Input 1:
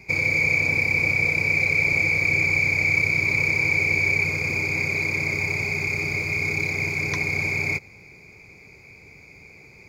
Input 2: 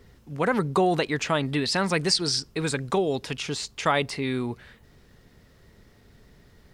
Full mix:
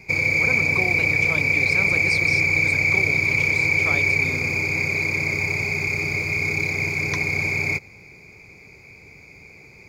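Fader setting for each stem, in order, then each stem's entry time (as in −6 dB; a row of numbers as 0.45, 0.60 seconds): +1.5, −9.5 decibels; 0.00, 0.00 seconds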